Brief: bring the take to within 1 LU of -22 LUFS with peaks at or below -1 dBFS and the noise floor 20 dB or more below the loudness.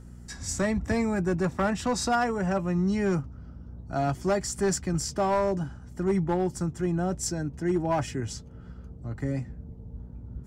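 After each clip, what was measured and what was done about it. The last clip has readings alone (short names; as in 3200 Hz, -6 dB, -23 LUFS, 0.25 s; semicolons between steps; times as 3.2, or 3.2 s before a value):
clipped 1.1%; flat tops at -19.0 dBFS; hum 60 Hz; harmonics up to 240 Hz; hum level -44 dBFS; loudness -28.0 LUFS; peak -19.0 dBFS; loudness target -22.0 LUFS
-> clip repair -19 dBFS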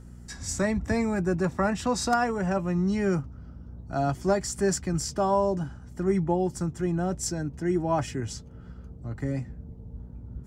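clipped 0.0%; hum 60 Hz; harmonics up to 240 Hz; hum level -44 dBFS
-> de-hum 60 Hz, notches 4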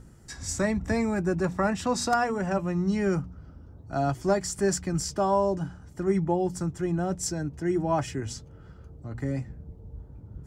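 hum none; loudness -28.0 LUFS; peak -10.0 dBFS; loudness target -22.0 LUFS
-> gain +6 dB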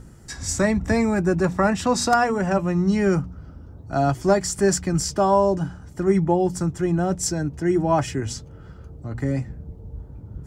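loudness -22.0 LUFS; peak -4.0 dBFS; noise floor -43 dBFS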